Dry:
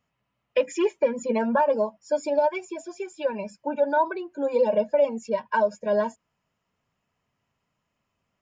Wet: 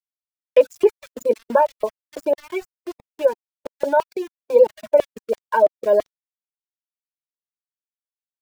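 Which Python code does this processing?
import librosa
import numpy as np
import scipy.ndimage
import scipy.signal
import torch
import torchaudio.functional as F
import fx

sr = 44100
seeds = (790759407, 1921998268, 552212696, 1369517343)

y = fx.filter_lfo_highpass(x, sr, shape='square', hz=3.0, low_hz=370.0, high_hz=2900.0, q=0.78)
y = fx.peak_eq(y, sr, hz=420.0, db=10.5, octaves=1.9)
y = np.where(np.abs(y) >= 10.0 ** (-34.5 / 20.0), y, 0.0)
y = fx.dereverb_blind(y, sr, rt60_s=0.77)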